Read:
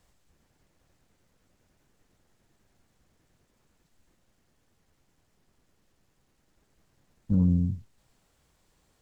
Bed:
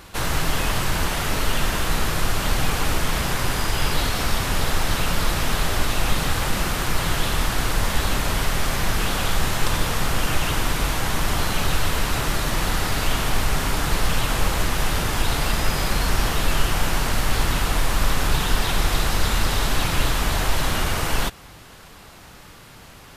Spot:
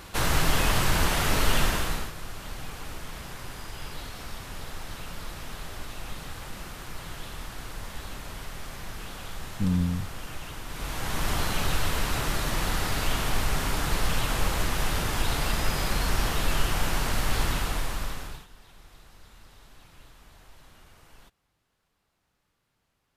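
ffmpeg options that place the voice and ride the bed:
-filter_complex "[0:a]adelay=2300,volume=-2.5dB[a];[1:a]volume=10.5dB,afade=t=out:st=1.59:d=0.53:silence=0.16788,afade=t=in:st=10.67:d=0.62:silence=0.266073,afade=t=out:st=17.45:d=1.02:silence=0.0473151[b];[a][b]amix=inputs=2:normalize=0"

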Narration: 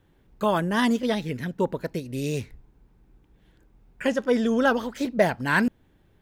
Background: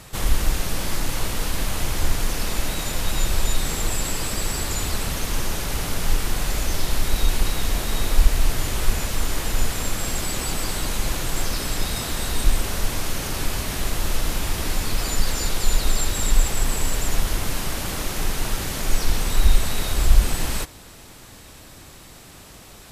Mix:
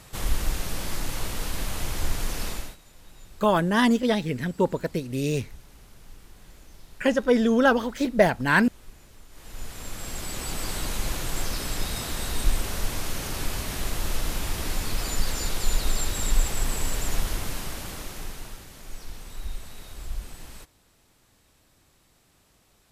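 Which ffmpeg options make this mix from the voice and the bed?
-filter_complex "[0:a]adelay=3000,volume=2dB[a];[1:a]volume=17dB,afade=t=out:st=2.47:d=0.3:silence=0.0841395,afade=t=in:st=9.3:d=1.45:silence=0.0749894,afade=t=out:st=17.18:d=1.48:silence=0.199526[b];[a][b]amix=inputs=2:normalize=0"

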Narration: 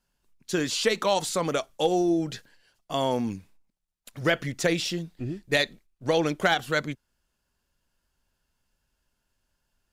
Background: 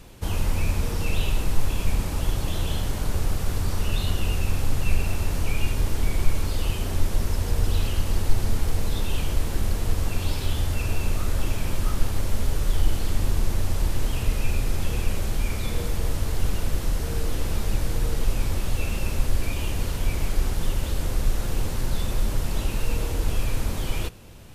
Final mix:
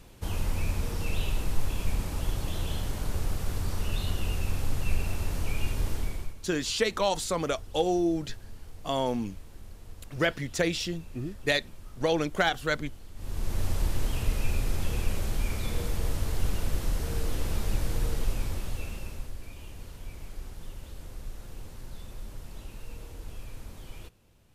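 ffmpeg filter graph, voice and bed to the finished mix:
-filter_complex "[0:a]adelay=5950,volume=-2.5dB[a];[1:a]volume=12.5dB,afade=t=out:st=5.92:d=0.43:silence=0.149624,afade=t=in:st=13.15:d=0.5:silence=0.125893,afade=t=out:st=18.03:d=1.31:silence=0.223872[b];[a][b]amix=inputs=2:normalize=0"

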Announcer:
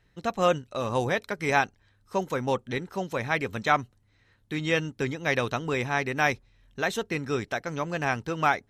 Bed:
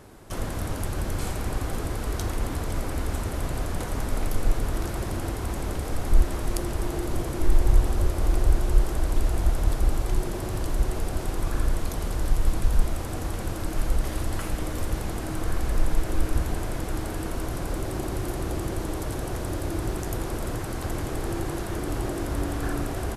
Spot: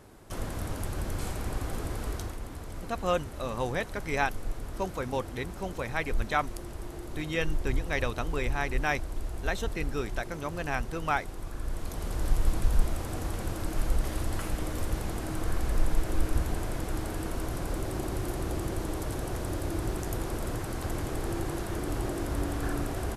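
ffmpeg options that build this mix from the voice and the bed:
-filter_complex "[0:a]adelay=2650,volume=-5dB[a];[1:a]volume=4dB,afade=t=out:st=2.07:d=0.32:silence=0.446684,afade=t=in:st=11.59:d=0.71:silence=0.375837[b];[a][b]amix=inputs=2:normalize=0"

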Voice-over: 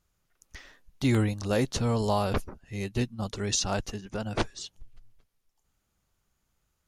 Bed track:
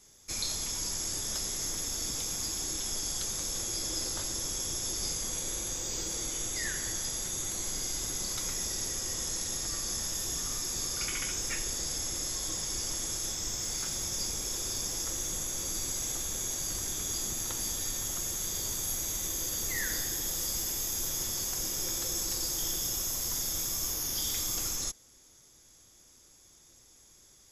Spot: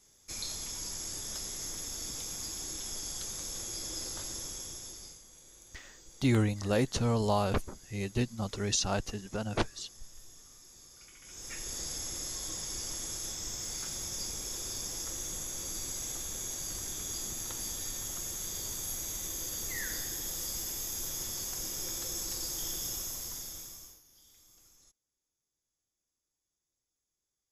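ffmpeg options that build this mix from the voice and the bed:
-filter_complex "[0:a]adelay=5200,volume=-2dB[a];[1:a]volume=12dB,afade=t=out:st=4.34:d=0.89:silence=0.158489,afade=t=in:st=11.22:d=0.56:silence=0.141254,afade=t=out:st=22.91:d=1.11:silence=0.0562341[b];[a][b]amix=inputs=2:normalize=0"

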